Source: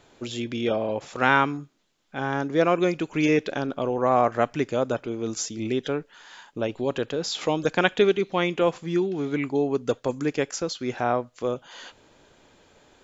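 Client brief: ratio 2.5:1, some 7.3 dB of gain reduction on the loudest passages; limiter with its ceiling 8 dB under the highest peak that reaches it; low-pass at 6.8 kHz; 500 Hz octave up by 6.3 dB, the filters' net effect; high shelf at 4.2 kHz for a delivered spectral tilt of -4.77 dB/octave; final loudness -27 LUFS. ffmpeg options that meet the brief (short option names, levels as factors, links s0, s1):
-af "lowpass=6800,equalizer=f=500:t=o:g=7.5,highshelf=f=4200:g=5.5,acompressor=threshold=0.0891:ratio=2.5,volume=0.944,alimiter=limit=0.178:level=0:latency=1"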